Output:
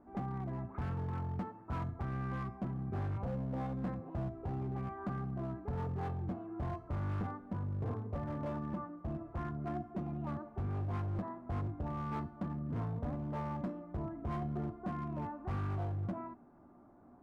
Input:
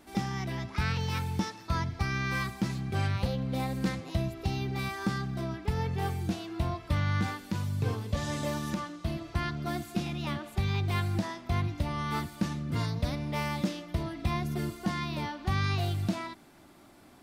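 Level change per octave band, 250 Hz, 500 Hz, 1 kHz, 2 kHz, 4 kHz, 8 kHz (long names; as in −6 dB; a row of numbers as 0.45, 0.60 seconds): −6.5 dB, −6.0 dB, −6.5 dB, −16.5 dB, below −25 dB, below −25 dB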